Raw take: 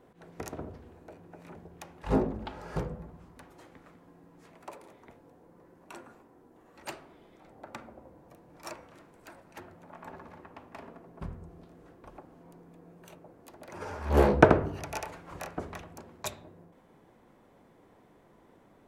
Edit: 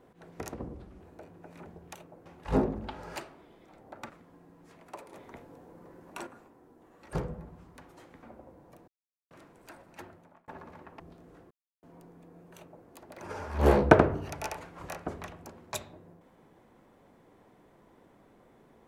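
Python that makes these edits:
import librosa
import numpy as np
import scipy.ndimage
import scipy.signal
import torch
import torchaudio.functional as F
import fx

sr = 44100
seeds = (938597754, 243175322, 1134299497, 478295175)

y = fx.edit(x, sr, fx.speed_span(start_s=0.54, length_s=0.36, speed=0.77),
    fx.swap(start_s=2.74, length_s=1.1, other_s=6.87, other_length_s=0.94),
    fx.clip_gain(start_s=4.87, length_s=1.14, db=5.5),
    fx.silence(start_s=8.46, length_s=0.43),
    fx.fade_out_span(start_s=9.64, length_s=0.42),
    fx.cut(start_s=10.58, length_s=0.93),
    fx.silence(start_s=12.02, length_s=0.32),
    fx.duplicate(start_s=13.07, length_s=0.31, to_s=1.84), tone=tone)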